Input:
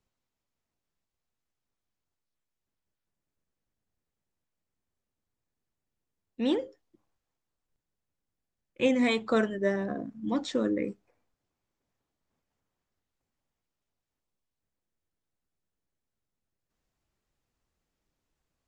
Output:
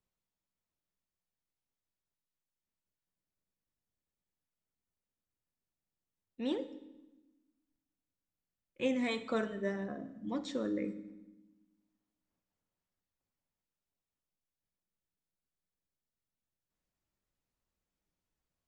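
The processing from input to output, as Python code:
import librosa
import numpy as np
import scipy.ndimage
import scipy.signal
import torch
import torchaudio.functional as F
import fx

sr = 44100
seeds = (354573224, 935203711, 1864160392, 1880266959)

y = fx.rev_fdn(x, sr, rt60_s=1.0, lf_ratio=1.55, hf_ratio=0.95, size_ms=32.0, drr_db=10.0)
y = y * 10.0 ** (-8.0 / 20.0)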